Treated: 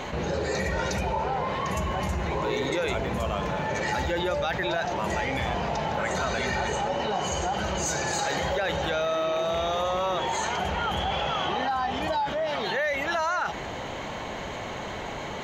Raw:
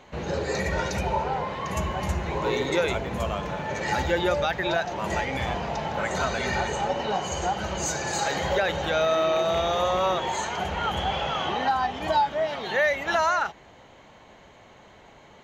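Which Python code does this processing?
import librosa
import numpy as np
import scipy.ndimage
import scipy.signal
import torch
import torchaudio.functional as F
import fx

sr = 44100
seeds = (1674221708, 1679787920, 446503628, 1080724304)

y = fx.env_flatten(x, sr, amount_pct=70)
y = y * 10.0 ** (-6.5 / 20.0)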